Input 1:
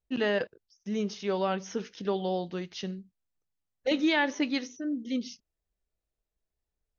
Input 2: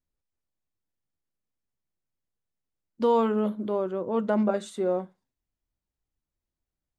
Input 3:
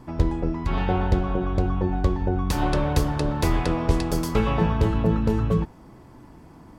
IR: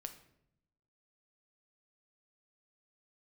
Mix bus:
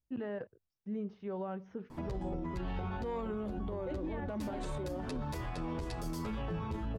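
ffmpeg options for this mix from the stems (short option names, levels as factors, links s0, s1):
-filter_complex "[0:a]lowpass=1300,equalizer=f=94:w=1.1:g=12,volume=0.376[s0];[1:a]asoftclip=type=tanh:threshold=0.15,volume=0.447,asplit=2[s1][s2];[2:a]acompressor=threshold=0.0251:ratio=3,asplit=2[s3][s4];[s4]adelay=9.5,afreqshift=-2.1[s5];[s3][s5]amix=inputs=2:normalize=1,adelay=1900,volume=1.12[s6];[s2]apad=whole_len=383219[s7];[s6][s7]sidechaincompress=threshold=0.0141:ratio=8:attack=5.4:release=170[s8];[s0][s1]amix=inputs=2:normalize=0,alimiter=level_in=2.24:limit=0.0631:level=0:latency=1:release=99,volume=0.447,volume=1[s9];[s8][s9]amix=inputs=2:normalize=0,alimiter=level_in=2:limit=0.0631:level=0:latency=1:release=26,volume=0.501"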